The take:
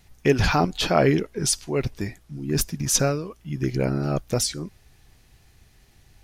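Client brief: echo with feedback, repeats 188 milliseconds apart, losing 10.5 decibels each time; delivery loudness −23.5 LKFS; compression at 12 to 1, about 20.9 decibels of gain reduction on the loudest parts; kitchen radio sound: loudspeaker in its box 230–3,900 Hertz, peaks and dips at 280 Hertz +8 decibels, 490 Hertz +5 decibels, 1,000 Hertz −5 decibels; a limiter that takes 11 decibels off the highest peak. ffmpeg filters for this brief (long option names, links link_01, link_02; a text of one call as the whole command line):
ffmpeg -i in.wav -af "acompressor=threshold=-35dB:ratio=12,alimiter=level_in=9dB:limit=-24dB:level=0:latency=1,volume=-9dB,highpass=230,equalizer=frequency=280:width_type=q:width=4:gain=8,equalizer=frequency=490:width_type=q:width=4:gain=5,equalizer=frequency=1000:width_type=q:width=4:gain=-5,lowpass=frequency=3900:width=0.5412,lowpass=frequency=3900:width=1.3066,aecho=1:1:188|376|564:0.299|0.0896|0.0269,volume=20dB" out.wav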